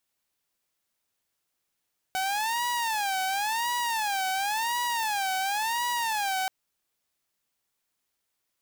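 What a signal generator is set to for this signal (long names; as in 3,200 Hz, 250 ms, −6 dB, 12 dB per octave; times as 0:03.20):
siren wail 755–969 Hz 0.94 per second saw −23.5 dBFS 4.33 s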